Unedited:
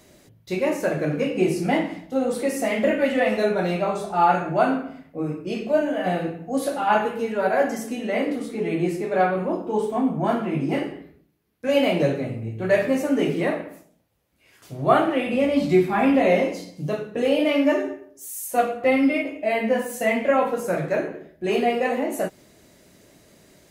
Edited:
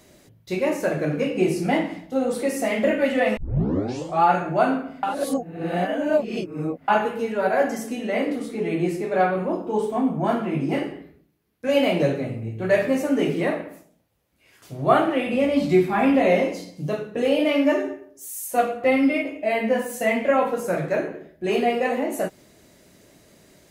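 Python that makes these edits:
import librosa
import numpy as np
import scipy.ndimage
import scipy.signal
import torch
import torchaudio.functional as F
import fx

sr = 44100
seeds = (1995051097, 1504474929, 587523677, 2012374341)

y = fx.edit(x, sr, fx.tape_start(start_s=3.37, length_s=0.86),
    fx.reverse_span(start_s=5.03, length_s=1.85), tone=tone)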